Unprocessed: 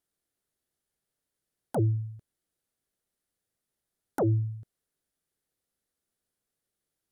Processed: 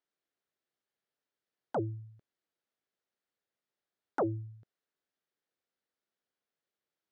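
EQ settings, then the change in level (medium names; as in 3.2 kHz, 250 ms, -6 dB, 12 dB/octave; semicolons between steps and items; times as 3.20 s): high-pass 470 Hz 6 dB/octave; dynamic bell 1.2 kHz, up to +6 dB, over -54 dBFS, Q 1.9; distance through air 160 m; 0.0 dB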